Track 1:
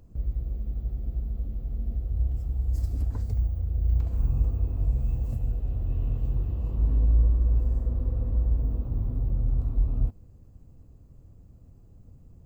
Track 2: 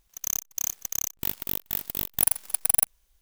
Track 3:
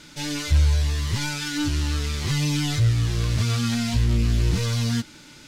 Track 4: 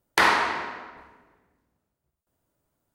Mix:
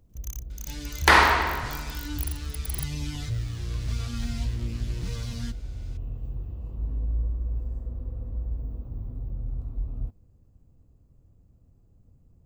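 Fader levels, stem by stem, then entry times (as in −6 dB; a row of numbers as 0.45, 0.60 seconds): −7.0, −14.5, −12.0, +3.0 decibels; 0.00, 0.00, 0.50, 0.90 seconds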